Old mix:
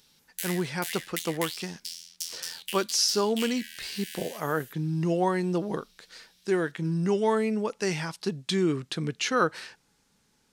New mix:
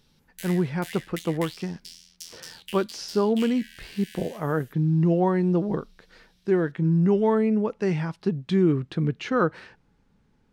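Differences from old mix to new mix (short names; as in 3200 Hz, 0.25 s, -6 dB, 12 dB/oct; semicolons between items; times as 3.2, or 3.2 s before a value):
speech: add tone controls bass +1 dB, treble -10 dB; master: add tilt -2.5 dB/oct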